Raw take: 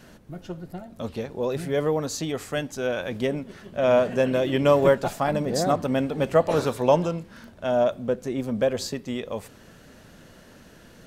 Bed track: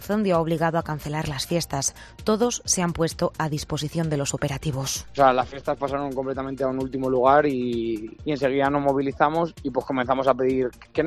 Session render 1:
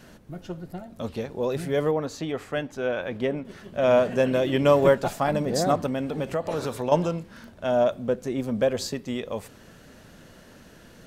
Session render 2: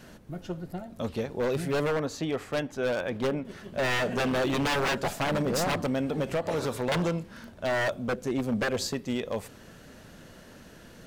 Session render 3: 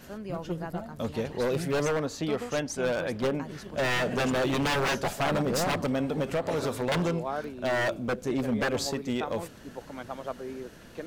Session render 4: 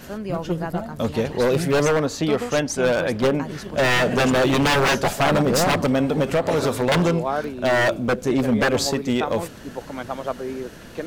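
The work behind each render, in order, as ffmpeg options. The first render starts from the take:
ffmpeg -i in.wav -filter_complex "[0:a]asettb=1/sr,asplit=3[link_01][link_02][link_03];[link_01]atrim=end=1.914[link_04];[link_02]atrim=start=1.91:end=3.45,asetpts=PTS-STARTPTS,afade=type=in:duration=0.004:curve=qsin,afade=type=out:start_time=1.536:duration=0.004:curve=qsin,bass=frequency=250:gain=-3,treble=frequency=4000:gain=-12[link_05];[link_03]atrim=start=3.446[link_06];[link_04][link_05]acrossfade=duration=0.004:curve1=hsin:curve2=qsin[link_07];[link_07][link_06]acrossfade=duration=0.004:curve1=qsin:curve2=hsin,asettb=1/sr,asplit=3[link_08][link_09][link_10];[link_08]atrim=end=5.864[link_11];[link_09]atrim=start=5.86:end=6.92,asetpts=PTS-STARTPTS,afade=type=in:duration=0.004:curve=qsin,afade=type=out:start_time=1.056:duration=0.004:curve=qsin,acompressor=threshold=-25dB:ratio=3:attack=3.2:release=140:knee=1:detection=peak[link_12];[link_10]atrim=start=6.916[link_13];[link_11][link_12]acrossfade=duration=0.004:curve1=hsin:curve2=qsin[link_14];[link_14][link_13]acrossfade=duration=0.004:curve1=qsin:curve2=hsin" out.wav
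ffmpeg -i in.wav -af "aeval=exprs='0.0841*(abs(mod(val(0)/0.0841+3,4)-2)-1)':channel_layout=same" out.wav
ffmpeg -i in.wav -i bed.wav -filter_complex "[1:a]volume=-16.5dB[link_01];[0:a][link_01]amix=inputs=2:normalize=0" out.wav
ffmpeg -i in.wav -af "volume=8.5dB" out.wav

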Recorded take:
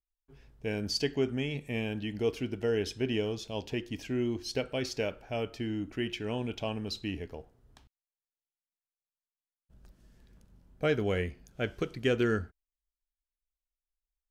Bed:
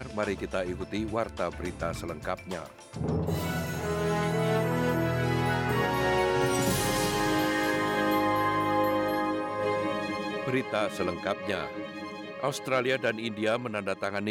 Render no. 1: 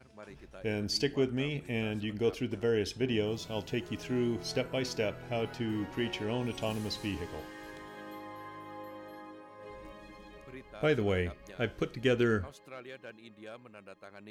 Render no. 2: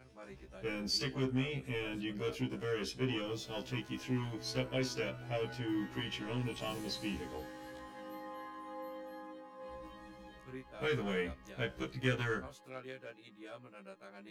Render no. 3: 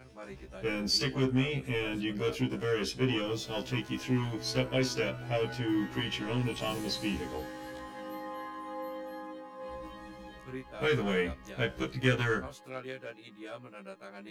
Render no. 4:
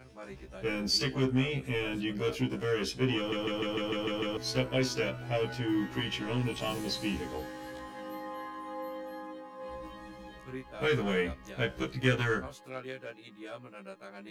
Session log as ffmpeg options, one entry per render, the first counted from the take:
ffmpeg -i in.wav -i bed.wav -filter_complex "[1:a]volume=-19.5dB[link_01];[0:a][link_01]amix=inputs=2:normalize=0" out.wav
ffmpeg -i in.wav -filter_complex "[0:a]acrossover=split=210|890[link_01][link_02][link_03];[link_02]volume=35dB,asoftclip=hard,volume=-35dB[link_04];[link_01][link_04][link_03]amix=inputs=3:normalize=0,afftfilt=real='re*1.73*eq(mod(b,3),0)':imag='im*1.73*eq(mod(b,3),0)':win_size=2048:overlap=0.75" out.wav
ffmpeg -i in.wav -af "volume=6dB" out.wav
ffmpeg -i in.wav -filter_complex "[0:a]asplit=9[link_01][link_02][link_03][link_04][link_05][link_06][link_07][link_08][link_09];[link_01]atrim=end=3.322[link_10];[link_02]atrim=start=3.168:end=3.322[link_11];[link_03]atrim=start=3.168:end=3.322[link_12];[link_04]atrim=start=3.168:end=3.322[link_13];[link_05]atrim=start=3.168:end=3.322[link_14];[link_06]atrim=start=3.168:end=3.322[link_15];[link_07]atrim=start=3.168:end=3.322[link_16];[link_08]atrim=start=3.168:end=3.322[link_17];[link_09]atrim=start=4.368[link_18];[link_10][link_11]acrossfade=duration=0.004:curve1=hsin:curve2=hsin[link_19];[link_19][link_12]acrossfade=duration=0.004:curve1=hsin:curve2=hsin[link_20];[link_20][link_13]acrossfade=duration=0.004:curve1=hsin:curve2=hsin[link_21];[link_21][link_14]acrossfade=duration=0.004:curve1=hsin:curve2=hsin[link_22];[link_22][link_15]acrossfade=duration=0.004:curve1=hsin:curve2=hsin[link_23];[link_23][link_16]acrossfade=duration=0.004:curve1=hsin:curve2=hsin[link_24];[link_24][link_17]acrossfade=duration=0.004:curve1=hsin:curve2=hsin[link_25];[link_25][link_18]acrossfade=duration=0.004:curve1=hsin:curve2=hsin" out.wav

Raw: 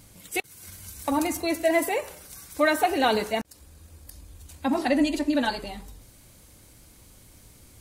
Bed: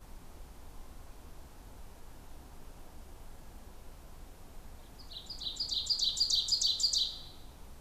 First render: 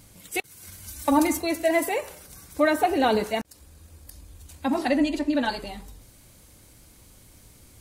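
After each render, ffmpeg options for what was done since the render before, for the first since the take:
ffmpeg -i in.wav -filter_complex "[0:a]asettb=1/sr,asplit=3[link_01][link_02][link_03];[link_01]atrim=end=0.874[link_04];[link_02]atrim=start=0.87:end=1.39,asetpts=PTS-STARTPTS,afade=type=in:duration=0.004:curve=qsin,afade=type=out:start_time=0.516:duration=0.004:curve=qsin,aecho=1:1:3.4:0.86,atrim=end_sample=22932[link_05];[link_03]atrim=start=1.386[link_06];[link_04][link_05]acrossfade=duration=0.004:curve1=hsin:curve2=qsin[link_07];[link_07][link_06]acrossfade=duration=0.004:curve1=qsin:curve2=hsin,asettb=1/sr,asplit=3[link_08][link_09][link_10];[link_08]atrim=end=2.264[link_11];[link_09]atrim=start=2.26:end=3.24,asetpts=PTS-STARTPTS,afade=type=in:duration=0.004:curve=qsin,afade=type=out:start_time=0.976:duration=0.004:curve=qsin,tiltshelf=frequency=860:gain=3.5[link_12];[link_10]atrim=start=3.236[link_13];[link_11][link_12]acrossfade=duration=0.004:curve1=hsin:curve2=qsin[link_14];[link_14][link_13]acrossfade=duration=0.004:curve1=qsin:curve2=hsin,asettb=1/sr,asplit=3[link_15][link_16][link_17];[link_15]atrim=end=4.964[link_18];[link_16]atrim=start=4.96:end=5.49,asetpts=PTS-STARTPTS,afade=type=in:duration=0.004:curve=qsin,afade=type=out:start_time=0.526:duration=0.004:curve=qsin,highshelf=frequency=6100:gain=-8[link_19];[link_17]atrim=start=5.486[link_20];[link_18][link_19]acrossfade=duration=0.004:curve1=hsin:curve2=qsin[link_21];[link_21][link_20]acrossfade=duration=0.004:curve1=qsin:curve2=hsin" out.wav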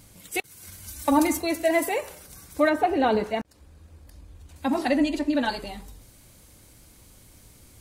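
ffmpeg -i in.wav -filter_complex "[0:a]asettb=1/sr,asplit=3[link_01][link_02][link_03];[link_01]atrim=end=2.694[link_04];[link_02]atrim=start=2.69:end=4.56,asetpts=PTS-STARTPTS,afade=type=in:duration=0.004:curve=qsin,afade=type=out:start_time=1.866:duration=0.004:curve=qsin,lowpass=frequency=2300:poles=1[link_05];[link_03]atrim=start=4.556[link_06];[link_04][link_05]acrossfade=duration=0.004:curve1=hsin:curve2=qsin[link_07];[link_07][link_06]acrossfade=duration=0.004:curve1=qsin:curve2=hsin" out.wav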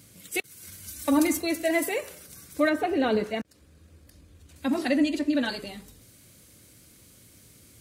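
ffmpeg -i in.wav -af "highpass=96,equalizer=frequency=860:width_type=o:width=0.67:gain=-10" out.wav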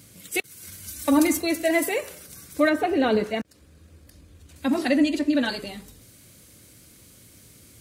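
ffmpeg -i in.wav -af "volume=3dB" out.wav

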